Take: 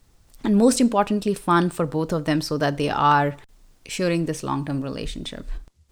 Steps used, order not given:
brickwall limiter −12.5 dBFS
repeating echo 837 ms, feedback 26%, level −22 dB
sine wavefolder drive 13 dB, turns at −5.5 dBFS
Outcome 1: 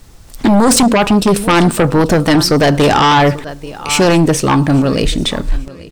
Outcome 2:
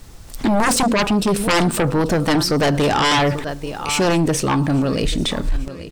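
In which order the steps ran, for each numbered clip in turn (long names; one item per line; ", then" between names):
repeating echo, then brickwall limiter, then sine wavefolder
repeating echo, then sine wavefolder, then brickwall limiter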